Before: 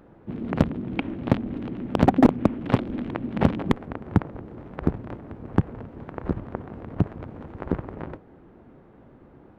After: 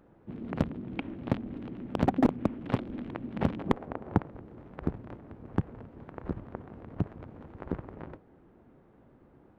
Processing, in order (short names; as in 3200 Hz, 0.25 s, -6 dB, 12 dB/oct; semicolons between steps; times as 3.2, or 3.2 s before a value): 3.66–4.21 bell 670 Hz +8 dB 2 oct; gain -8 dB